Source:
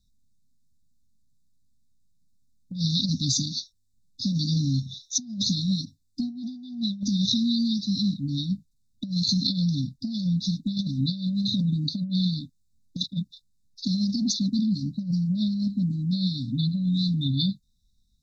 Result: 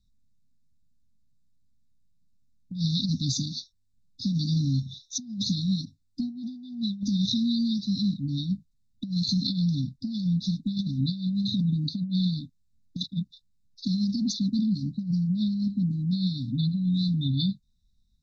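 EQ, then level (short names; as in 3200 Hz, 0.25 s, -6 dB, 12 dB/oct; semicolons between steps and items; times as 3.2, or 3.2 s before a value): LPF 3200 Hz 6 dB/oct; bell 540 Hz -9 dB 0.97 oct; 0.0 dB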